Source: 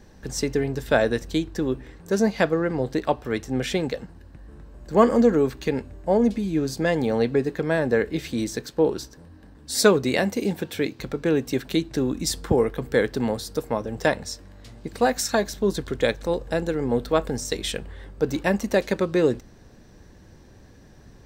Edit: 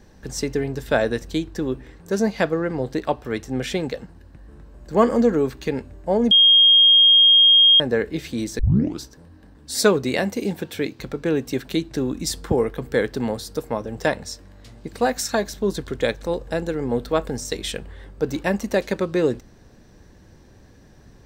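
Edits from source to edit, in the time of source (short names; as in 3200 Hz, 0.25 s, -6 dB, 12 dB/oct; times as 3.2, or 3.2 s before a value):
6.31–7.8 bleep 3240 Hz -9.5 dBFS
8.59 tape start 0.41 s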